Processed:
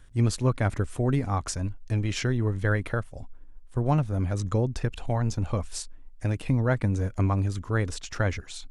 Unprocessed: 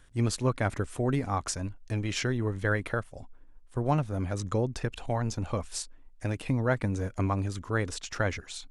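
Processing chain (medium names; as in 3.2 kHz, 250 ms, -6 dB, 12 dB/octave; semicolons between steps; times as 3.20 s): bass shelf 170 Hz +7.5 dB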